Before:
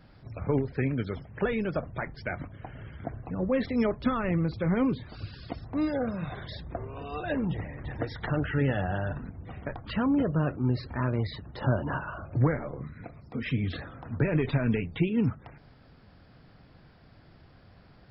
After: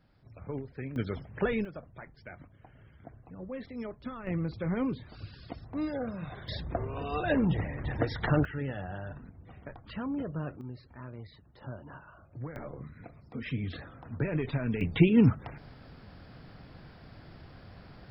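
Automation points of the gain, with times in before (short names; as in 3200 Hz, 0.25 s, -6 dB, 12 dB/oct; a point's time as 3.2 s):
-11 dB
from 0.96 s -1 dB
from 1.65 s -13 dB
from 4.27 s -5 dB
from 6.48 s +3 dB
from 8.45 s -9 dB
from 10.61 s -16 dB
from 12.56 s -5 dB
from 14.81 s +5 dB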